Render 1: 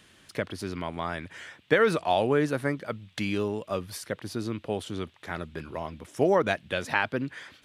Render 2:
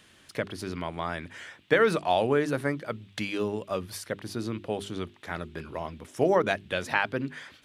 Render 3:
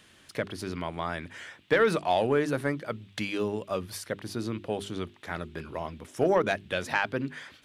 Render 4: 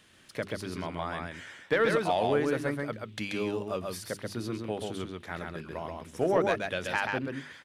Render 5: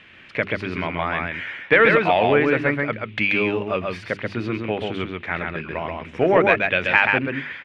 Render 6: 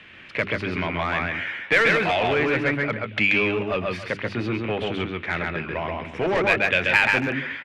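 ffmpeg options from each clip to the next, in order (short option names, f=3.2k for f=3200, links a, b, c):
-af "bandreject=f=50:t=h:w=6,bandreject=f=100:t=h:w=6,bandreject=f=150:t=h:w=6,bandreject=f=200:t=h:w=6,bandreject=f=250:t=h:w=6,bandreject=f=300:t=h:w=6,bandreject=f=350:t=h:w=6,bandreject=f=400:t=h:w=6"
-af "asoftclip=type=tanh:threshold=-12dB"
-af "aecho=1:1:133:0.668,volume=-3dB"
-af "lowpass=f=2.4k:t=q:w=3.3,volume=8.5dB"
-filter_complex "[0:a]asplit=2[a][b];[b]adelay=150,highpass=300,lowpass=3.4k,asoftclip=type=hard:threshold=-9.5dB,volume=-14dB[c];[a][c]amix=inputs=2:normalize=0,acrossover=split=110|1900[d][e][f];[e]asoftclip=type=tanh:threshold=-21.5dB[g];[d][g][f]amix=inputs=3:normalize=0,volume=1.5dB"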